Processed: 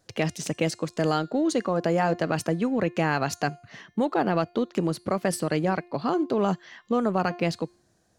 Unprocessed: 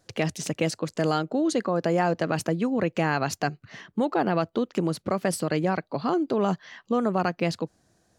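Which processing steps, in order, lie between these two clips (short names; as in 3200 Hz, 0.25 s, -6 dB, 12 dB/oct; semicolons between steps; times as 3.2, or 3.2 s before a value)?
de-hum 352.5 Hz, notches 31; in parallel at -12 dB: crossover distortion -37 dBFS; on the sum: gain -1.5 dB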